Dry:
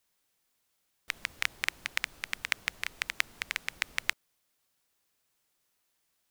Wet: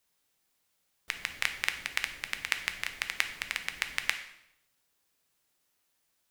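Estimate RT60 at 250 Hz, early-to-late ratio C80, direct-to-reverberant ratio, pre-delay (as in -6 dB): 0.95 s, 13.0 dB, 7.0 dB, 6 ms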